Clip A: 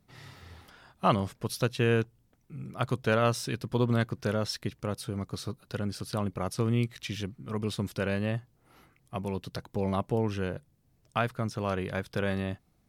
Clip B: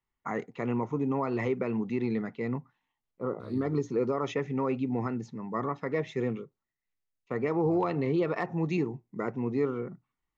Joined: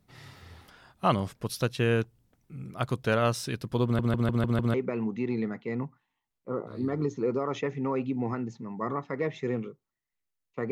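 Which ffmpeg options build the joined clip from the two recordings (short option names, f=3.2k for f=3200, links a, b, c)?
-filter_complex "[0:a]apad=whole_dur=10.71,atrim=end=10.71,asplit=6[a][b][c][d][e][f];[a]atrim=end=3.992[g];[b]atrim=start=3.838:end=3.992[h];[c]atrim=start=3.838:end=3.992[i];[d]atrim=start=3.838:end=3.992[j];[e]atrim=start=3.838:end=3.992[k];[f]atrim=start=3.838:end=3.992[l];[1:a]atrim=start=1.468:end=7.44[m];[g][h]acrossfade=d=0.004:c1=hsin:c2=hsin[n];[n][i]acrossfade=d=0.004:c1=hsin:c2=hsin[o];[o][j]acrossfade=d=0.004:c1=hsin:c2=hsin[p];[p][k]acrossfade=d=0.004:c1=hsin:c2=hsin[q];[q][l]acrossfade=d=0.004:c1=hsin:c2=hsin[r];[r][m]acrossfade=d=0.004:c1=hsin:c2=hsin"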